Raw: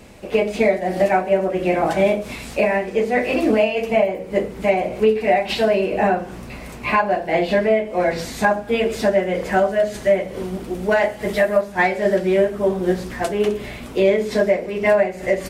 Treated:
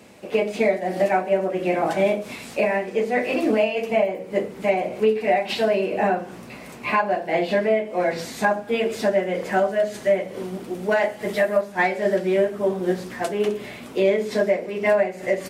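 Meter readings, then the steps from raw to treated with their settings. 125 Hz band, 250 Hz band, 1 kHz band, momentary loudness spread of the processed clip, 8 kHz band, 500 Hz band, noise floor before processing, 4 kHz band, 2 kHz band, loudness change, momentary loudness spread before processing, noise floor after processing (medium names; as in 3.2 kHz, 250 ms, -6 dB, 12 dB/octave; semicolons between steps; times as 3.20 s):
-5.0 dB, -3.5 dB, -3.0 dB, 6 LU, -3.0 dB, -3.0 dB, -35 dBFS, -3.0 dB, -3.0 dB, -3.0 dB, 6 LU, -40 dBFS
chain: high-pass 150 Hz 12 dB/octave; trim -3 dB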